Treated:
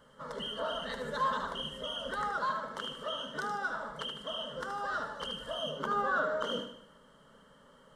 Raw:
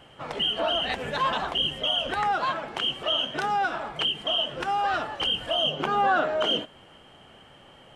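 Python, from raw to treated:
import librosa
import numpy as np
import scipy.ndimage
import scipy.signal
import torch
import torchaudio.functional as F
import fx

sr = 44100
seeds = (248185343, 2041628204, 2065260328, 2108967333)

y = fx.fixed_phaser(x, sr, hz=500.0, stages=8)
y = fx.echo_feedback(y, sr, ms=76, feedback_pct=45, wet_db=-8)
y = y * librosa.db_to_amplitude(-4.5)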